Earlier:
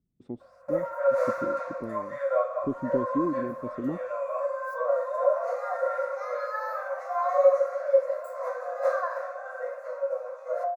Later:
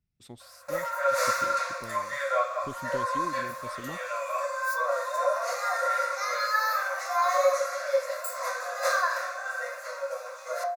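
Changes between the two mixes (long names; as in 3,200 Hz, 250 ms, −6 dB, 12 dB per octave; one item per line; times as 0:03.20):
speech: remove low-pass filter 6,600 Hz 12 dB per octave
master: remove drawn EQ curve 100 Hz 0 dB, 290 Hz +13 dB, 4,100 Hz −22 dB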